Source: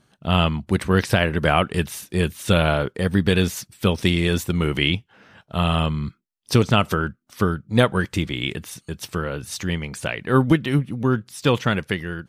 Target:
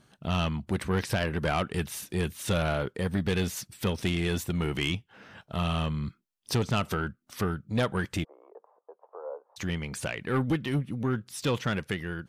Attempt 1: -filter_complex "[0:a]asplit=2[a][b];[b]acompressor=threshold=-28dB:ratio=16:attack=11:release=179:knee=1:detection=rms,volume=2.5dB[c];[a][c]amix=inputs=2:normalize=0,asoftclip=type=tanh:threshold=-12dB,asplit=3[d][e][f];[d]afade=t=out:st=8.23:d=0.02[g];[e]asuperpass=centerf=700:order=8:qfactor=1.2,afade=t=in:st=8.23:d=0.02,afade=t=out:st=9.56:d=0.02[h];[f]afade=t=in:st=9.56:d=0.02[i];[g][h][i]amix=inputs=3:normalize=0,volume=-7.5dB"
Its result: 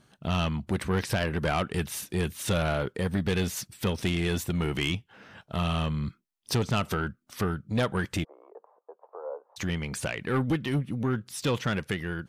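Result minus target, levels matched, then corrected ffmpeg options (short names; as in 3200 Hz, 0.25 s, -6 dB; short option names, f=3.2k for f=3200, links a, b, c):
compressor: peak gain reduction -6 dB
-filter_complex "[0:a]asplit=2[a][b];[b]acompressor=threshold=-34.5dB:ratio=16:attack=11:release=179:knee=1:detection=rms,volume=2.5dB[c];[a][c]amix=inputs=2:normalize=0,asoftclip=type=tanh:threshold=-12dB,asplit=3[d][e][f];[d]afade=t=out:st=8.23:d=0.02[g];[e]asuperpass=centerf=700:order=8:qfactor=1.2,afade=t=in:st=8.23:d=0.02,afade=t=out:st=9.56:d=0.02[h];[f]afade=t=in:st=9.56:d=0.02[i];[g][h][i]amix=inputs=3:normalize=0,volume=-7.5dB"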